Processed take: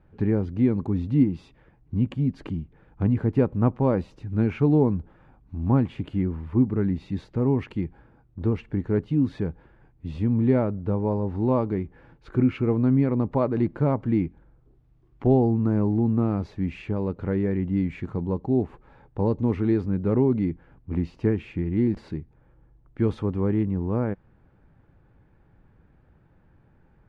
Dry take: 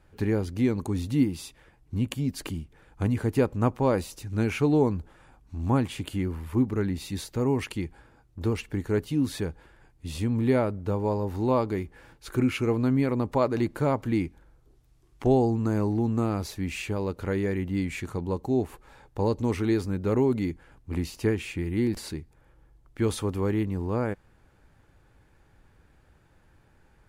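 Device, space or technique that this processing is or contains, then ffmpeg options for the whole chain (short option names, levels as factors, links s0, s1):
phone in a pocket: -af "lowpass=3300,equalizer=f=170:t=o:w=1.4:g=6,highshelf=f=2100:g=-10"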